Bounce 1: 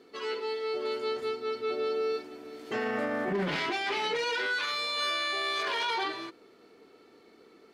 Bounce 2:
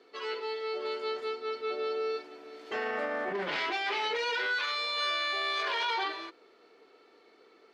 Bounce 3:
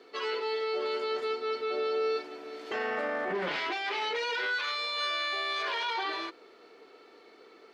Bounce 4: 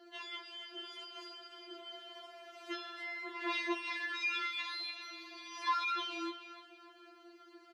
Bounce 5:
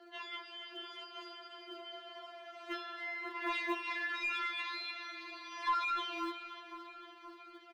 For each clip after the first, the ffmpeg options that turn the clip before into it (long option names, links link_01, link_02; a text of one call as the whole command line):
ffmpeg -i in.wav -filter_complex "[0:a]acrossover=split=360 6100:gain=0.158 1 0.224[link_01][link_02][link_03];[link_01][link_02][link_03]amix=inputs=3:normalize=0" out.wav
ffmpeg -i in.wav -af "alimiter=level_in=5.5dB:limit=-24dB:level=0:latency=1:release=11,volume=-5.5dB,volume=5dB" out.wav
ffmpeg -i in.wav -filter_complex "[0:a]acrossover=split=270|1000[link_01][link_02][link_03];[link_01]acompressor=threshold=-57dB:ratio=6[link_04];[link_03]asplit=2[link_05][link_06];[link_06]adelay=296,lowpass=frequency=3500:poles=1,volume=-8dB,asplit=2[link_07][link_08];[link_08]adelay=296,lowpass=frequency=3500:poles=1,volume=0.44,asplit=2[link_09][link_10];[link_10]adelay=296,lowpass=frequency=3500:poles=1,volume=0.44,asplit=2[link_11][link_12];[link_12]adelay=296,lowpass=frequency=3500:poles=1,volume=0.44,asplit=2[link_13][link_14];[link_14]adelay=296,lowpass=frequency=3500:poles=1,volume=0.44[link_15];[link_05][link_07][link_09][link_11][link_13][link_15]amix=inputs=6:normalize=0[link_16];[link_04][link_02][link_16]amix=inputs=3:normalize=0,afftfilt=real='re*4*eq(mod(b,16),0)':imag='im*4*eq(mod(b,16),0)':win_size=2048:overlap=0.75" out.wav
ffmpeg -i in.wav -filter_complex "[0:a]asplit=2[link_01][link_02];[link_02]highpass=frequency=720:poles=1,volume=10dB,asoftclip=type=tanh:threshold=-23dB[link_03];[link_01][link_03]amix=inputs=2:normalize=0,lowpass=frequency=1600:poles=1,volume=-6dB,acrossover=split=300|2500[link_04][link_05][link_06];[link_04]acrusher=bits=3:mode=log:mix=0:aa=0.000001[link_07];[link_07][link_05][link_06]amix=inputs=3:normalize=0,aecho=1:1:521|1042|1563|2084|2605|3126:0.178|0.105|0.0619|0.0365|0.0215|0.0127" out.wav